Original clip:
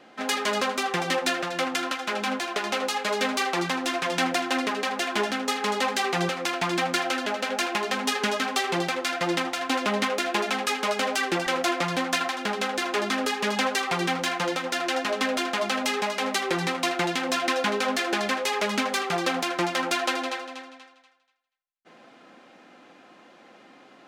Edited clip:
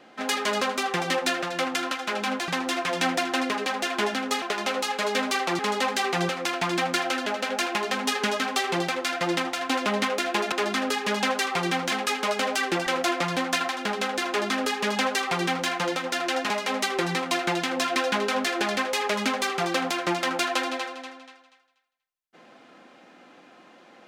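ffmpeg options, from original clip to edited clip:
-filter_complex "[0:a]asplit=7[s0][s1][s2][s3][s4][s5][s6];[s0]atrim=end=2.482[s7];[s1]atrim=start=3.648:end=5.592[s8];[s2]atrim=start=2.478:end=3.652[s9];[s3]atrim=start=5.588:end=10.522[s10];[s4]atrim=start=12.878:end=14.282[s11];[s5]atrim=start=10.518:end=15.102[s12];[s6]atrim=start=16.018[s13];[s7][s8]acrossfade=d=0.004:c1=hsin:c2=hsin[s14];[s14][s9]acrossfade=d=0.004:c1=hsin:c2=hsin[s15];[s15][s10]acrossfade=d=0.004:c1=hsin:c2=hsin[s16];[s16][s11]acrossfade=d=0.004:c1=hsin:c2=hsin[s17];[s17][s12]acrossfade=d=0.004:c1=hsin:c2=hsin[s18];[s18][s13]acrossfade=d=0.004:c1=hsin:c2=hsin"

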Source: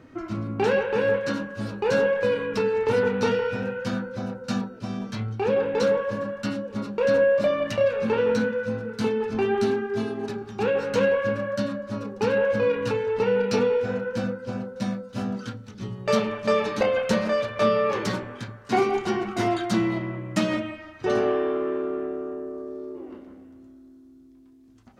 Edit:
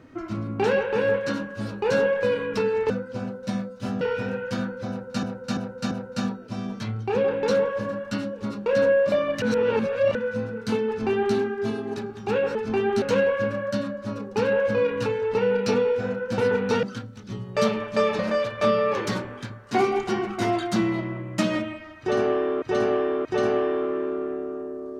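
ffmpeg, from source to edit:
-filter_complex "[0:a]asplit=15[s0][s1][s2][s3][s4][s5][s6][s7][s8][s9][s10][s11][s12][s13][s14];[s0]atrim=end=2.902[s15];[s1]atrim=start=14.228:end=15.342[s16];[s2]atrim=start=3.348:end=4.572[s17];[s3]atrim=start=4.228:end=4.572[s18];[s4]atrim=start=4.228:end=4.572[s19];[s5]atrim=start=4.228:end=7.742[s20];[s6]atrim=start=7.738:end=8.472,asetpts=PTS-STARTPTS,areverse[s21];[s7]atrim=start=8.468:end=10.872[s22];[s8]atrim=start=9.198:end=9.672[s23];[s9]atrim=start=10.868:end=14.232[s24];[s10]atrim=start=2.898:end=3.352[s25];[s11]atrim=start=15.338:end=16.702[s26];[s12]atrim=start=17.168:end=21.602[s27];[s13]atrim=start=20.968:end=21.602[s28];[s14]atrim=start=20.968[s29];[s15][s16]acrossfade=d=0.004:c1=hsin:c2=hsin[s30];[s30][s17]acrossfade=d=0.004:c1=hsin:c2=hsin[s31];[s31][s18]acrossfade=d=0.004:c1=hsin:c2=hsin[s32];[s32][s19]acrossfade=d=0.004:c1=hsin:c2=hsin[s33];[s33][s20]acrossfade=d=0.004:c1=hsin:c2=hsin[s34];[s34][s21]acrossfade=d=0.004:c1=hsin:c2=hsin[s35];[s35][s22]acrossfade=d=0.004:c1=hsin:c2=hsin[s36];[s36][s23]acrossfade=d=0.004:c1=hsin:c2=hsin[s37];[s37][s24]acrossfade=d=0.004:c1=hsin:c2=hsin[s38];[s38][s25]acrossfade=d=0.004:c1=hsin:c2=hsin[s39];[s39][s26]acrossfade=d=0.004:c1=hsin:c2=hsin[s40];[s40][s27]acrossfade=d=0.004:c1=hsin:c2=hsin[s41];[s41][s28]acrossfade=d=0.004:c1=hsin:c2=hsin[s42];[s42][s29]acrossfade=d=0.004:c1=hsin:c2=hsin"

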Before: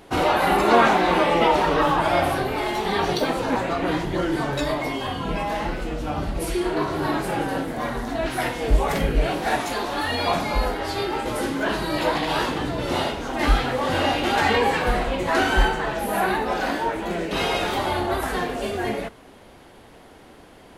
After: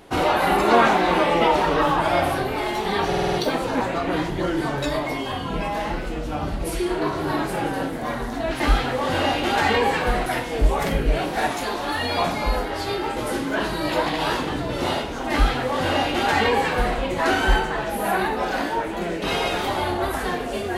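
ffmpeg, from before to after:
-filter_complex "[0:a]asplit=8[s0][s1][s2][s3][s4][s5][s6][s7];[s0]atrim=end=3.132[s8];[s1]atrim=start=3.078:end=3.132[s9];[s2]atrim=start=3.078:end=3.132[s10];[s3]atrim=start=3.078:end=3.132[s11];[s4]atrim=start=3.078:end=3.132[s12];[s5]atrim=start=3.078:end=8.352[s13];[s6]atrim=start=13.398:end=15.062[s14];[s7]atrim=start=8.348[s15];[s8][s9]acrossfade=d=0.004:c1=hsin:c2=hsin[s16];[s16][s10]acrossfade=d=0.004:c1=hsin:c2=hsin[s17];[s17][s11]acrossfade=d=0.004:c1=hsin:c2=hsin[s18];[s18][s12]acrossfade=d=0.004:c1=hsin:c2=hsin[s19];[s19][s13]acrossfade=d=0.004:c1=hsin:c2=hsin[s20];[s20][s14]acrossfade=d=0.004:c1=hsin:c2=hsin[s21];[s21][s15]acrossfade=d=0.004:c1=hsin:c2=hsin"

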